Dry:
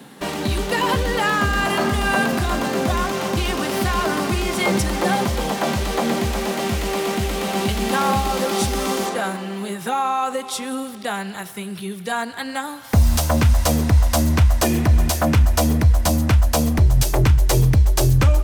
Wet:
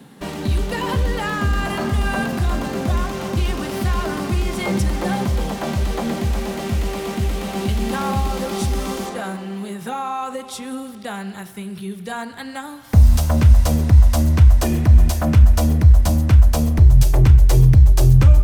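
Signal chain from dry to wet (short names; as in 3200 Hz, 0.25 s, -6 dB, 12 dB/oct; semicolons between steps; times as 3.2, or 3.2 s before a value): low shelf 190 Hz +11.5 dB; on a send: reverb RT60 0.75 s, pre-delay 31 ms, DRR 14 dB; on the sum: gain -5.5 dB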